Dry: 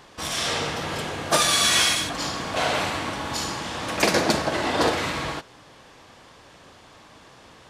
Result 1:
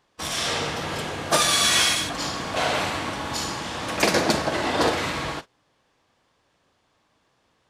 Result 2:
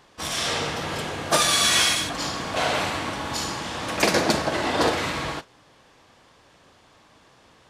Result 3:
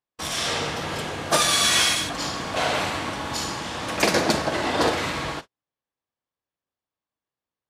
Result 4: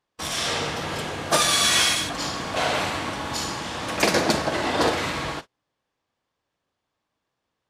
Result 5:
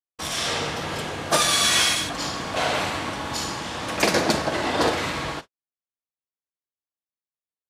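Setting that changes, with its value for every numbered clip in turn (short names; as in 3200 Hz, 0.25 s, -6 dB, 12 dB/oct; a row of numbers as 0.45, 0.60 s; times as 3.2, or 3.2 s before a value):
gate, range: -18, -6, -44, -31, -59 dB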